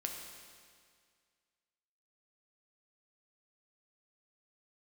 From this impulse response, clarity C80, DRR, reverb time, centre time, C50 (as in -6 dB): 4.5 dB, 1.0 dB, 2.0 s, 65 ms, 3.5 dB